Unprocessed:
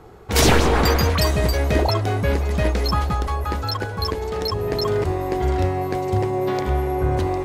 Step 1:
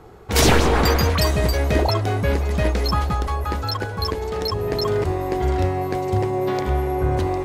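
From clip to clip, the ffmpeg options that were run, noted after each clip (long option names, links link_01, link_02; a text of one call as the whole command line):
ffmpeg -i in.wav -af anull out.wav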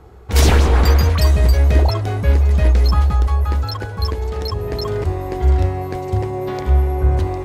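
ffmpeg -i in.wav -af "equalizer=frequency=65:width_type=o:width=0.95:gain=12,volume=-2dB" out.wav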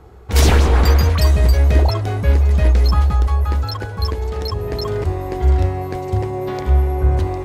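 ffmpeg -i in.wav -af "asoftclip=type=hard:threshold=-3dB" out.wav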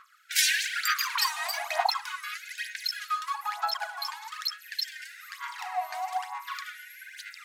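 ffmpeg -i in.wav -af "aphaser=in_gain=1:out_gain=1:delay=3.3:decay=0.67:speed=1.1:type=sinusoidal,highpass=frequency=430:width=0.5412,highpass=frequency=430:width=1.3066,afftfilt=real='re*gte(b*sr/1024,620*pow(1500/620,0.5+0.5*sin(2*PI*0.46*pts/sr)))':imag='im*gte(b*sr/1024,620*pow(1500/620,0.5+0.5*sin(2*PI*0.46*pts/sr)))':win_size=1024:overlap=0.75,volume=-3.5dB" out.wav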